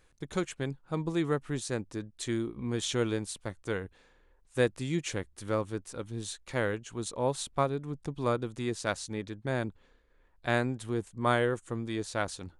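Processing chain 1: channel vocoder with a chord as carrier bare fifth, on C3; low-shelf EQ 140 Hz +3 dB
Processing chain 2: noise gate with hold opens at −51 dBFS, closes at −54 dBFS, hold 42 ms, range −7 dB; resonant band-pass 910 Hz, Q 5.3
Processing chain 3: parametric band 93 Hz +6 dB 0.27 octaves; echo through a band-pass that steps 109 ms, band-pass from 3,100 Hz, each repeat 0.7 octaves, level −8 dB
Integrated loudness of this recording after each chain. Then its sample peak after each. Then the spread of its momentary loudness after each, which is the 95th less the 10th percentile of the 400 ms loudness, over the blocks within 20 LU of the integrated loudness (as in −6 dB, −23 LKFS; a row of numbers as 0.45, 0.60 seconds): −34.0, −47.0, −33.0 LKFS; −14.5, −21.5, −12.5 dBFS; 9, 16, 8 LU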